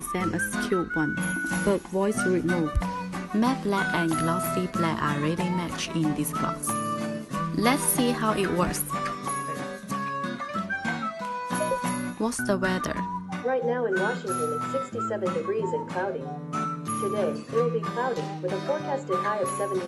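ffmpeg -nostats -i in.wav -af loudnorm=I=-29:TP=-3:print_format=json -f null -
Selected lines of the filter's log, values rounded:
"input_i" : "-27.4",
"input_tp" : "-8.0",
"input_lra" : "2.8",
"input_thresh" : "-37.4",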